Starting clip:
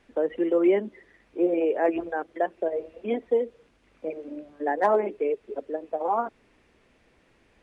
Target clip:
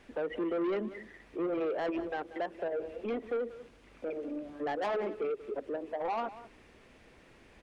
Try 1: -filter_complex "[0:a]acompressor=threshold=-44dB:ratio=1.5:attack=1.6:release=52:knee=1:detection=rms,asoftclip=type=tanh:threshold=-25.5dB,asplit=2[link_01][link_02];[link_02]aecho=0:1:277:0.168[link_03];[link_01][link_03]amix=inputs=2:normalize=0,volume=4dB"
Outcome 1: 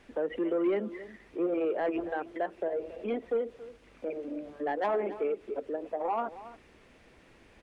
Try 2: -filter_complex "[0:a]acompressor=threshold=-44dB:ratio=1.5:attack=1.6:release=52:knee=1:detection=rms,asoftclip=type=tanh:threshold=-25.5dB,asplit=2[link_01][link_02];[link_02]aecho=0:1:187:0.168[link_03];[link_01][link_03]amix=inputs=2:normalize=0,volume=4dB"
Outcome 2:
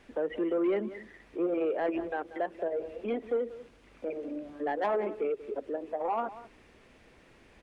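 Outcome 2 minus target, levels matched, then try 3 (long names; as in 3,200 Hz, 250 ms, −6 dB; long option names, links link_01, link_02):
soft clipping: distortion −8 dB
-filter_complex "[0:a]acompressor=threshold=-44dB:ratio=1.5:attack=1.6:release=52:knee=1:detection=rms,asoftclip=type=tanh:threshold=-32.5dB,asplit=2[link_01][link_02];[link_02]aecho=0:1:187:0.168[link_03];[link_01][link_03]amix=inputs=2:normalize=0,volume=4dB"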